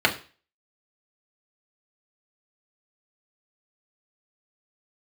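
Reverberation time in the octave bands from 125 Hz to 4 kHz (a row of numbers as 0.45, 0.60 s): 0.40, 0.35, 0.35, 0.35, 0.40, 0.40 s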